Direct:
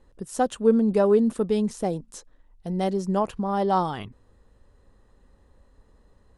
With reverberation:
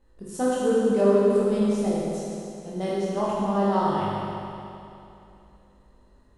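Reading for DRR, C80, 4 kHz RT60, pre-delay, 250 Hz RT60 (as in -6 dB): -8.0 dB, -2.0 dB, 2.7 s, 19 ms, 2.8 s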